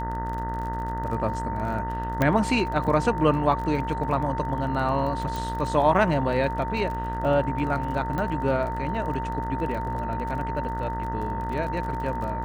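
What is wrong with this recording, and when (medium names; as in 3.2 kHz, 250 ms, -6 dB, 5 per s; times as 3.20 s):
buzz 60 Hz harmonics 33 -32 dBFS
crackle 33 per s -33 dBFS
whine 910 Hz -30 dBFS
2.22 s: pop -10 dBFS
5.36 s: pop
8.18 s: pop -18 dBFS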